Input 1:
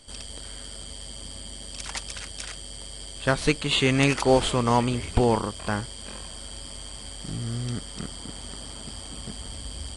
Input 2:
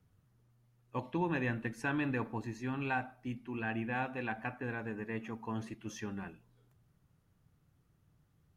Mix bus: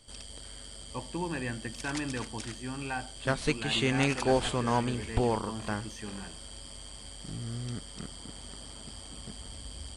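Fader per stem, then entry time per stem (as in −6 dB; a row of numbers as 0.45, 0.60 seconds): −6.5, −1.0 decibels; 0.00, 0.00 seconds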